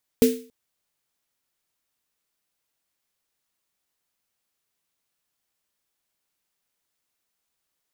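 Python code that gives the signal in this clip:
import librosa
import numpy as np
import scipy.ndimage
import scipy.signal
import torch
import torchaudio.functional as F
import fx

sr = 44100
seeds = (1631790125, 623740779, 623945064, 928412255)

y = fx.drum_snare(sr, seeds[0], length_s=0.28, hz=250.0, second_hz=450.0, noise_db=-12.0, noise_from_hz=1800.0, decay_s=0.38, noise_decay_s=0.38)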